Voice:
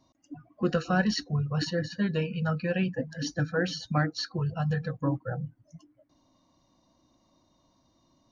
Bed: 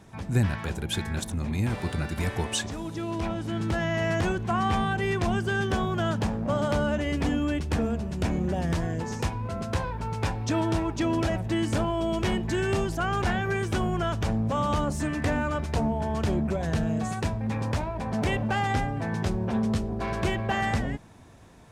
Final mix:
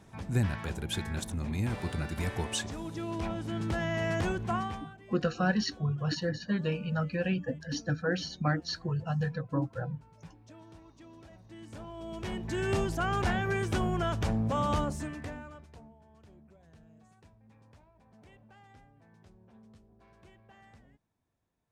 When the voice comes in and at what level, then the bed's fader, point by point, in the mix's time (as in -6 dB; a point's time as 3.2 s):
4.50 s, -2.5 dB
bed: 4.55 s -4.5 dB
5 s -27 dB
11.3 s -27 dB
12.74 s -3 dB
14.79 s -3 dB
16.01 s -31 dB